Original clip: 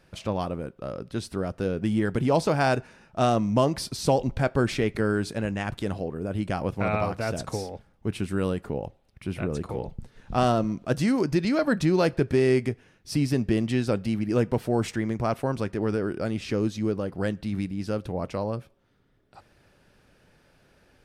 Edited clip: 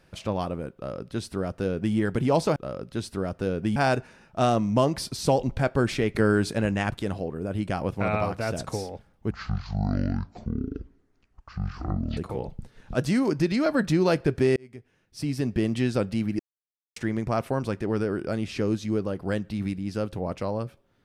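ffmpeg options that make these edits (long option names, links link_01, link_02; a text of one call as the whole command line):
ffmpeg -i in.wav -filter_complex "[0:a]asplit=11[link_01][link_02][link_03][link_04][link_05][link_06][link_07][link_08][link_09][link_10][link_11];[link_01]atrim=end=2.562[link_12];[link_02]atrim=start=0.748:end=1.952[link_13];[link_03]atrim=start=2.558:end=4.952[link_14];[link_04]atrim=start=4.948:end=5.702,asetpts=PTS-STARTPTS,volume=3.5dB[link_15];[link_05]atrim=start=5.698:end=8.114[link_16];[link_06]atrim=start=8.11:end=9.57,asetpts=PTS-STARTPTS,asetrate=22491,aresample=44100,atrim=end_sample=126247,asetpts=PTS-STARTPTS[link_17];[link_07]atrim=start=9.566:end=10.342[link_18];[link_08]atrim=start=10.868:end=12.49,asetpts=PTS-STARTPTS,afade=type=out:start_time=1.618:duration=0.004:curve=hsin[link_19];[link_09]atrim=start=12.49:end=14.32,asetpts=PTS-STARTPTS,afade=type=in:duration=1.18,afade=type=out:start_time=1.826:duration=0.004:curve=hsin[link_20];[link_10]atrim=start=14.32:end=14.89,asetpts=PTS-STARTPTS,volume=0[link_21];[link_11]atrim=start=14.89,asetpts=PTS-STARTPTS,afade=type=in:duration=0.004:curve=hsin[link_22];[link_12][link_13]acrossfade=duration=0.004:curve1=hsin:curve2=hsin[link_23];[link_23][link_14]acrossfade=duration=0.004:curve1=hsin:curve2=hsin[link_24];[link_24][link_15]acrossfade=duration=0.004:curve1=hsin:curve2=hsin[link_25];[link_25][link_16]acrossfade=duration=0.004:curve1=hsin:curve2=hsin[link_26];[link_26][link_17]acrossfade=duration=0.004:curve1=hsin:curve2=hsin[link_27];[link_27][link_18]acrossfade=duration=0.004:curve1=hsin:curve2=hsin[link_28];[link_19][link_20][link_21][link_22]concat=n=4:v=0:a=1[link_29];[link_28][link_29]acrossfade=duration=0.004:curve1=hsin:curve2=hsin" out.wav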